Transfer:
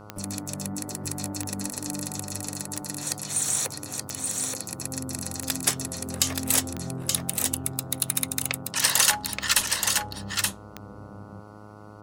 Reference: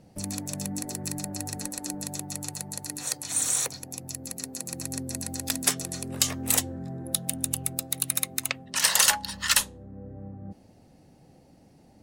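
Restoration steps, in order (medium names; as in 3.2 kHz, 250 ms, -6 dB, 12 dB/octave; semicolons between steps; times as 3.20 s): de-click; de-hum 104.6 Hz, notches 14; inverse comb 876 ms -4 dB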